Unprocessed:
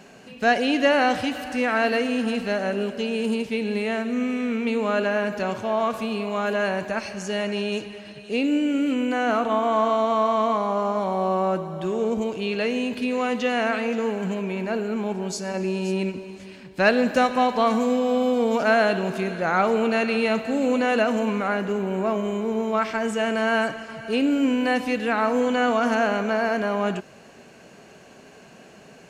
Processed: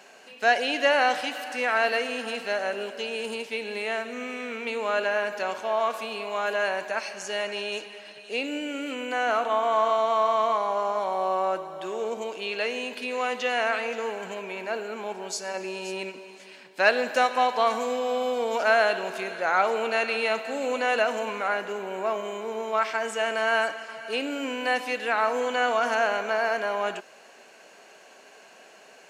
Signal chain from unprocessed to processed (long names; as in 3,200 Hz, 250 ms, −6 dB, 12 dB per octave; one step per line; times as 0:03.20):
high-pass filter 560 Hz 12 dB per octave
notch filter 1,200 Hz, Q 22